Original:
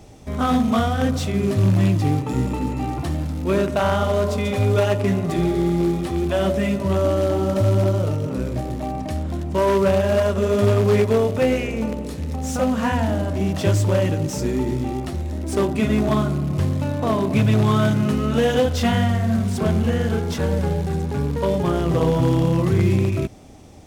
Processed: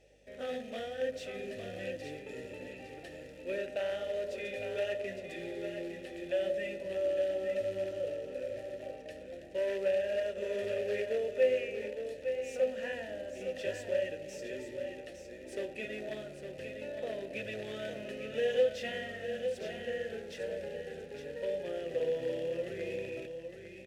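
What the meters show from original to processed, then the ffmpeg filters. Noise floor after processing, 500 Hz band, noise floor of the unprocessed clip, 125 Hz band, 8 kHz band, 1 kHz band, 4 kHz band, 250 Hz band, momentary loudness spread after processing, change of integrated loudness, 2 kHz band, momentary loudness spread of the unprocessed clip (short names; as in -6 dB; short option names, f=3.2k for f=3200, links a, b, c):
-49 dBFS, -11.5 dB, -29 dBFS, -34.0 dB, under -15 dB, -24.5 dB, -13.5 dB, -25.5 dB, 12 LU, -16.0 dB, -11.0 dB, 8 LU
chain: -filter_complex "[0:a]asplit=3[a][b][c];[a]bandpass=f=530:t=q:w=8,volume=0dB[d];[b]bandpass=f=1.84k:t=q:w=8,volume=-6dB[e];[c]bandpass=f=2.48k:t=q:w=8,volume=-9dB[f];[d][e][f]amix=inputs=3:normalize=0,crystalizer=i=4.5:c=0,aeval=exprs='val(0)+0.000708*(sin(2*PI*50*n/s)+sin(2*PI*2*50*n/s)/2+sin(2*PI*3*50*n/s)/3+sin(2*PI*4*50*n/s)/4+sin(2*PI*5*50*n/s)/5)':c=same,aecho=1:1:859:0.422,volume=-6dB"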